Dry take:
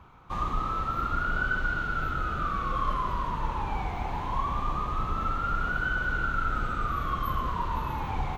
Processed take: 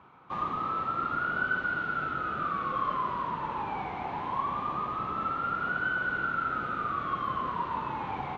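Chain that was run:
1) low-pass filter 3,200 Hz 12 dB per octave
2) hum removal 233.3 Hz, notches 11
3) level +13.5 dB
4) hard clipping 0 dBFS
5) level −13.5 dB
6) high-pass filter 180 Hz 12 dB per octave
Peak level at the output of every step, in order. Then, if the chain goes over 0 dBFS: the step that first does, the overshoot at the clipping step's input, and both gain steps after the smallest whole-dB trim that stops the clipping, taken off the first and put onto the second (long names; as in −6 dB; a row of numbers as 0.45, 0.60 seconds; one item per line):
−15.5, −15.5, −2.0, −2.0, −15.5, −18.0 dBFS
no step passes full scale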